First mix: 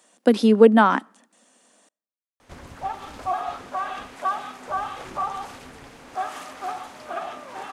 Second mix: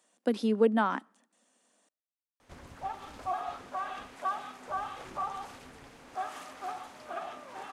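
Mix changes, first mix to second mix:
speech −11.5 dB
background −7.5 dB

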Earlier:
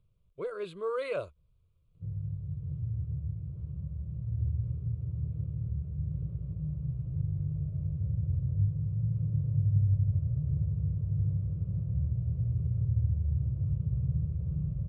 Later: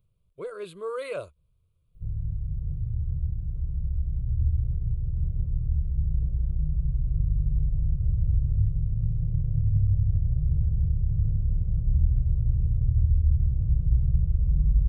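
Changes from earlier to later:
background: remove high-pass filter 92 Hz 24 dB per octave
master: remove high-frequency loss of the air 70 metres

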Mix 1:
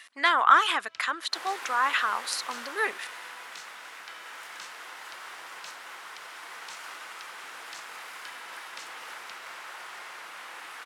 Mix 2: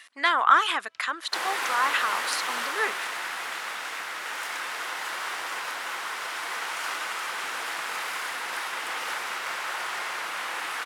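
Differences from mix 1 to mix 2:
first sound −8.5 dB
second sound +10.5 dB

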